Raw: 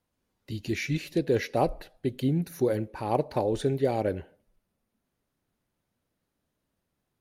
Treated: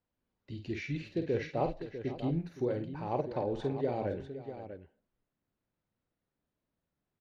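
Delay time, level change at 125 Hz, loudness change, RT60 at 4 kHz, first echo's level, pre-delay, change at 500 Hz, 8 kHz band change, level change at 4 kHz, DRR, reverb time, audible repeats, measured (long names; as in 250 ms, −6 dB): 49 ms, −6.0 dB, −6.5 dB, no reverb audible, −7.5 dB, no reverb audible, −6.0 dB, below −15 dB, −10.5 dB, no reverb audible, no reverb audible, 3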